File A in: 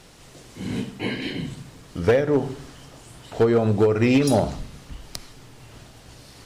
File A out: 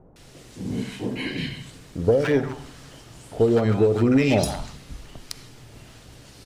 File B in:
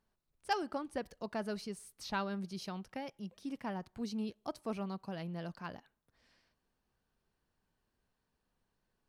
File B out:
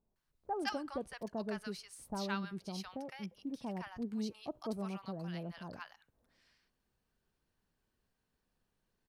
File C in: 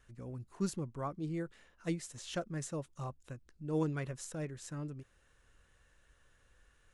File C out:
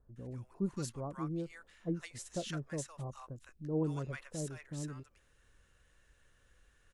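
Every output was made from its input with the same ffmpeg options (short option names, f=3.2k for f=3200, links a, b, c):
-filter_complex "[0:a]acrossover=split=920[a][b];[b]adelay=160[c];[a][c]amix=inputs=2:normalize=0"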